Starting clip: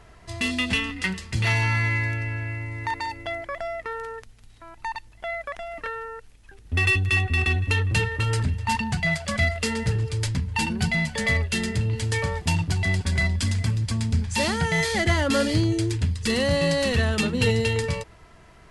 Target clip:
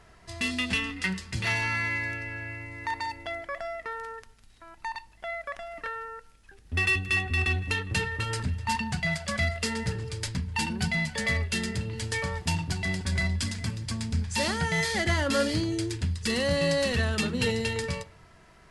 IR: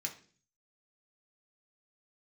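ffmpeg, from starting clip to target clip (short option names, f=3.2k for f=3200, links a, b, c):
-filter_complex "[0:a]asplit=2[a][b];[1:a]atrim=start_sample=2205,asetrate=29547,aresample=44100[c];[b][c]afir=irnorm=-1:irlink=0,volume=-13dB[d];[a][d]amix=inputs=2:normalize=0,volume=-4.5dB"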